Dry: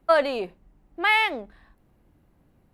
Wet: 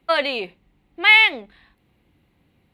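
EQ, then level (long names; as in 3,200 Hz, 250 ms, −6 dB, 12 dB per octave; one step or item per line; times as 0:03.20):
high-pass filter 55 Hz
flat-topped bell 2,900 Hz +10.5 dB 1.3 octaves
notch filter 620 Hz, Q 12
0.0 dB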